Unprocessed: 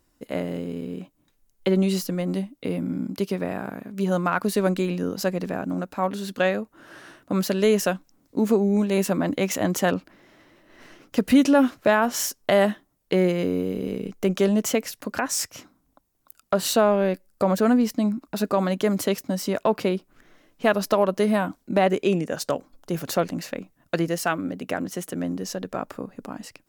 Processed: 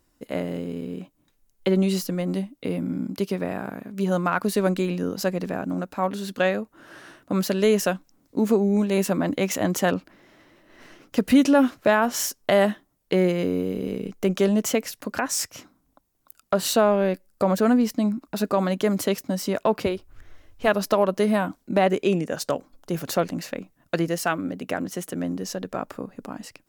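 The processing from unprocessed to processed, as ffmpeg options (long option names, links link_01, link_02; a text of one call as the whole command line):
ffmpeg -i in.wav -filter_complex "[0:a]asettb=1/sr,asplit=3[link_01][link_02][link_03];[link_01]atrim=end=19.864[link_04];[link_02]atrim=start=19.86:end=20.68,asetpts=PTS-STARTPTS,afade=type=in:duration=0.004:curve=qsin,afade=type=out:start_time=0.816:duration=0.004:curve=qsin,lowshelf=frequency=120:width_type=q:width=3:gain=13.5[link_05];[link_03]atrim=start=20.676[link_06];[link_04][link_05]acrossfade=duration=0.004:curve1=hsin:curve2=qsin[link_07];[link_07][link_06]acrossfade=duration=0.004:curve1=qsin:curve2=hsin" out.wav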